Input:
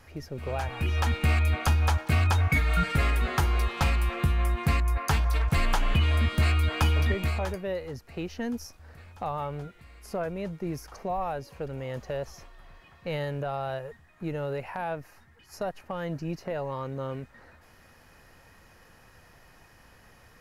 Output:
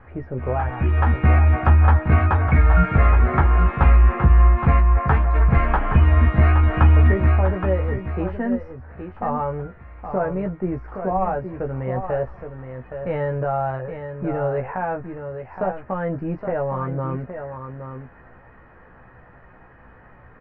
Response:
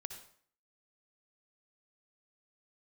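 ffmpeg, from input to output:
-filter_complex "[0:a]lowpass=f=1.8k:w=0.5412,lowpass=f=1.8k:w=1.3066,asplit=2[a][b];[b]adelay=16,volume=-5dB[c];[a][c]amix=inputs=2:normalize=0,asplit=2[d][e];[e]aecho=0:1:819:0.376[f];[d][f]amix=inputs=2:normalize=0,volume=7dB"

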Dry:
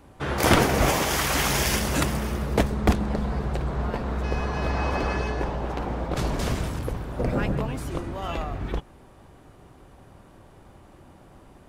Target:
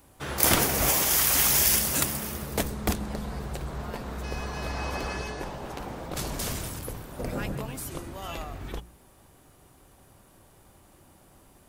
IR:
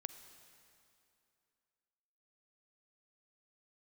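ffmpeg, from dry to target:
-af "aemphasis=mode=production:type=75fm,bandreject=f=59.66:t=h:w=4,bandreject=f=119.32:t=h:w=4,bandreject=f=178.98:t=h:w=4,bandreject=f=238.64:t=h:w=4,bandreject=f=298.3:t=h:w=4,bandreject=f=357.96:t=h:w=4,bandreject=f=417.62:t=h:w=4,bandreject=f=477.28:t=h:w=4,volume=-6dB"

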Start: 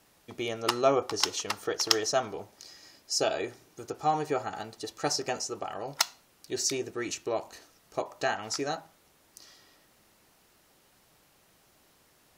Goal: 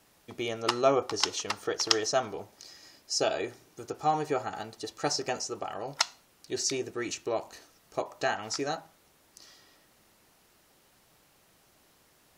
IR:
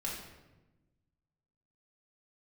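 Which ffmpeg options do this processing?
-filter_complex "[0:a]acrossover=split=9000[a][b];[b]acompressor=threshold=-56dB:ratio=4:attack=1:release=60[c];[a][c]amix=inputs=2:normalize=0"

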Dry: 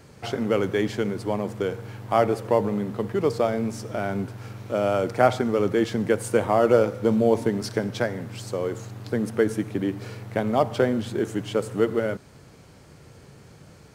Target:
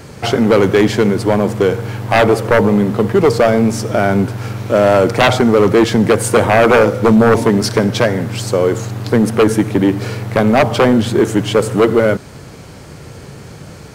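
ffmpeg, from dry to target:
-af "aeval=exprs='0.596*sin(PI/2*3.55*val(0)/0.596)':c=same"

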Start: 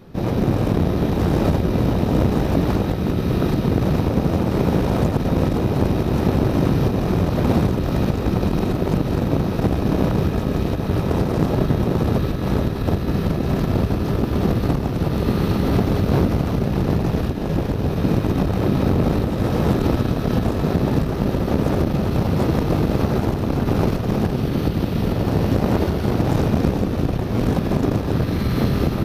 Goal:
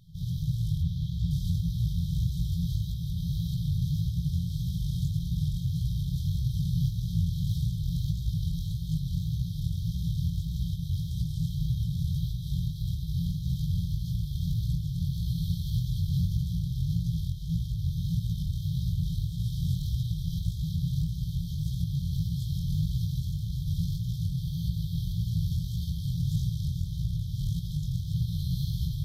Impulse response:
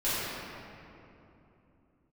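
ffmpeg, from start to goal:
-filter_complex "[0:a]flanger=delay=16:depth=7.7:speed=1.7,asettb=1/sr,asplit=3[a][b][c];[a]atrim=end=0.824[d];[b]atrim=start=0.82:end=1.31,asetpts=PTS-STARTPTS,afade=t=in:d=0.004:c=qsin,afade=t=out:st=0.486:d=0.004:c=qsin,acrossover=split=4900[e][f];[f]acompressor=threshold=-58dB:ratio=4:attack=1:release=60[g];[e][g]amix=inputs=2:normalize=0[h];[c]atrim=start=1.306[i];[d][h]acrossfade=d=0.004:c1=hsin:c2=qsin[j];[j][i]acrossfade=d=0.004:c1=qsin:c2=hsin,afftfilt=real='re*(1-between(b*sr/4096,180,3100))':imag='im*(1-between(b*sr/4096,180,3100))':win_size=4096:overlap=0.75,volume=-4dB"

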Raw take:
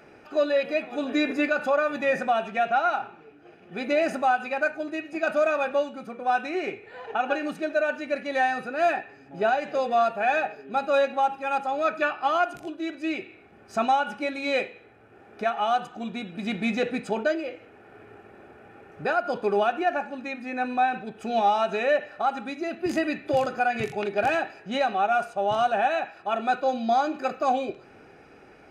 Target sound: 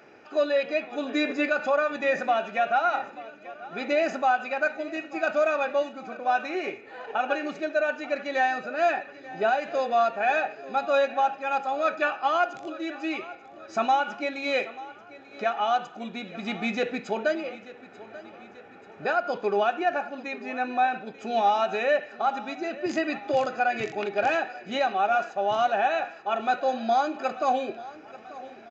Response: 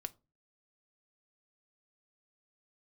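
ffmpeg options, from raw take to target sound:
-filter_complex "[0:a]highpass=f=260:p=1,asplit=2[a][b];[b]aecho=0:1:887|1774|2661|3548|4435:0.126|0.068|0.0367|0.0198|0.0107[c];[a][c]amix=inputs=2:normalize=0,aresample=16000,aresample=44100"

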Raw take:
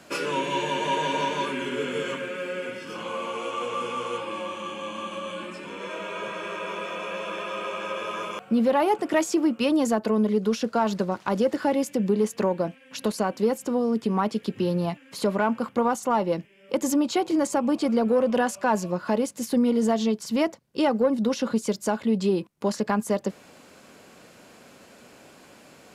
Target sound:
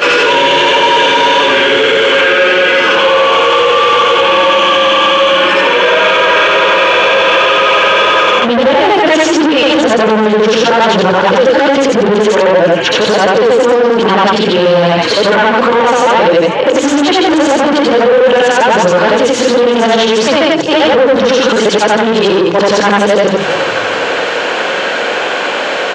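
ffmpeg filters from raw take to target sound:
-filter_complex "[0:a]afftfilt=real='re':imag='-im':win_size=8192:overlap=0.75,equalizer=f=870:w=4.6:g=2.5,bandreject=f=50:t=h:w=6,bandreject=f=100:t=h:w=6,bandreject=f=150:t=h:w=6,bandreject=f=200:t=h:w=6,bandreject=f=250:t=h:w=6,bandreject=f=300:t=h:w=6,bandreject=f=350:t=h:w=6,bandreject=f=400:t=h:w=6,acrossover=split=340|3000[a][b][c];[b]acompressor=threshold=-43dB:ratio=2[d];[a][d][c]amix=inputs=3:normalize=0,asplit=2[e][f];[f]asplit=5[g][h][i][j][k];[g]adelay=419,afreqshift=-50,volume=-22.5dB[l];[h]adelay=838,afreqshift=-100,volume=-26.5dB[m];[i]adelay=1257,afreqshift=-150,volume=-30.5dB[n];[j]adelay=1676,afreqshift=-200,volume=-34.5dB[o];[k]adelay=2095,afreqshift=-250,volume=-38.6dB[p];[l][m][n][o][p]amix=inputs=5:normalize=0[q];[e][q]amix=inputs=2:normalize=0,asplit=2[r][s];[s]highpass=f=720:p=1,volume=29dB,asoftclip=type=tanh:threshold=-17.5dB[t];[r][t]amix=inputs=2:normalize=0,lowpass=f=3.5k:p=1,volume=-6dB,highpass=130,equalizer=f=140:t=q:w=4:g=-4,equalizer=f=230:t=q:w=4:g=-7,equalizer=f=500:t=q:w=4:g=6,equalizer=f=1.6k:t=q:w=4:g=5,equalizer=f=3.1k:t=q:w=4:g=5,equalizer=f=5k:t=q:w=4:g=-6,lowpass=f=6k:w=0.5412,lowpass=f=6k:w=1.3066,alimiter=level_in=21dB:limit=-1dB:release=50:level=0:latency=1,volume=-1dB"

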